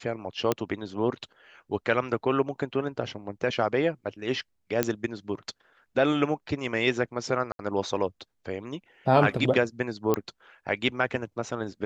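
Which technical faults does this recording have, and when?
0.52 s: pop -10 dBFS
4.83 s: pop -8 dBFS
7.52–7.59 s: dropout 72 ms
10.14 s: pop -11 dBFS

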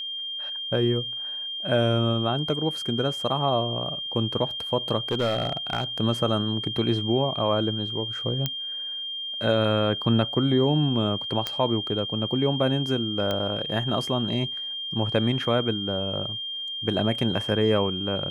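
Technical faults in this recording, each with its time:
whine 3.2 kHz -30 dBFS
5.08–5.84 s: clipped -19.5 dBFS
8.46 s: pop -10 dBFS
11.47 s: pop -12 dBFS
13.31 s: pop -14 dBFS

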